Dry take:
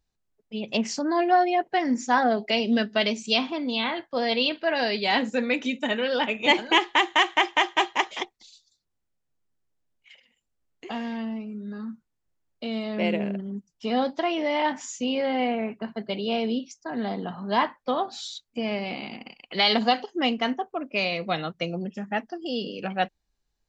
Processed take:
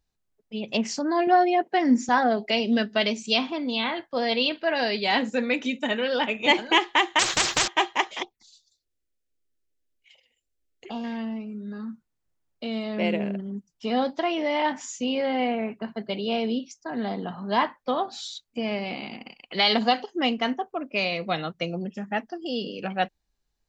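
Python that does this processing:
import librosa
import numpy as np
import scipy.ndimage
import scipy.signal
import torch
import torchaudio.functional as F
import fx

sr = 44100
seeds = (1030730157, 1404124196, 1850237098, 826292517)

y = fx.highpass_res(x, sr, hz=220.0, q=1.8, at=(1.27, 2.09))
y = fx.spectral_comp(y, sr, ratio=10.0, at=(7.19, 7.68))
y = fx.env_phaser(y, sr, low_hz=150.0, high_hz=1900.0, full_db=-35.5, at=(8.22, 11.04))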